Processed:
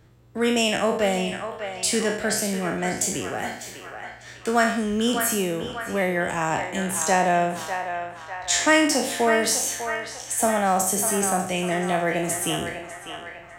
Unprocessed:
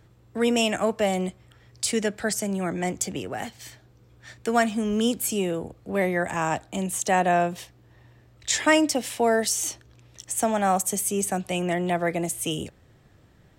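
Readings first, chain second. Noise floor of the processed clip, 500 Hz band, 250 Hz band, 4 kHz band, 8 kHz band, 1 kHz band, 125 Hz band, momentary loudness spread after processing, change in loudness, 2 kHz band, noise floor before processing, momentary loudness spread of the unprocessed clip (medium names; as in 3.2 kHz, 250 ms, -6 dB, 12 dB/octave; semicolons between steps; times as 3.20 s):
-43 dBFS, +1.5 dB, +0.5 dB, +3.5 dB, +3.5 dB, +2.5 dB, +0.5 dB, 13 LU, +2.0 dB, +4.5 dB, -57 dBFS, 12 LU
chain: spectral sustain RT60 0.60 s; band-passed feedback delay 599 ms, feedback 65%, band-pass 1.4 kHz, level -5.5 dB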